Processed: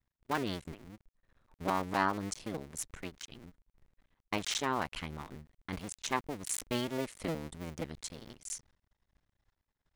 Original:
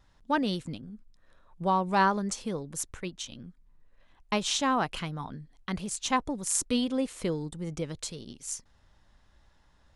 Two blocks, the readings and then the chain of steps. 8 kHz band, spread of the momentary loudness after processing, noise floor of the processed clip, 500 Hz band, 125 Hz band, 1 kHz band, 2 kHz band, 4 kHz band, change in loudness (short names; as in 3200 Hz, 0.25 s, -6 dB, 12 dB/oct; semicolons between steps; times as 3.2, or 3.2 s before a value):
-7.0 dB, 15 LU, under -85 dBFS, -5.5 dB, -6.0 dB, -7.0 dB, -4.5 dB, -6.0 dB, -6.5 dB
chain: cycle switcher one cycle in 2, muted; expander -53 dBFS; bell 2100 Hz +4 dB 0.46 oct; gain -4 dB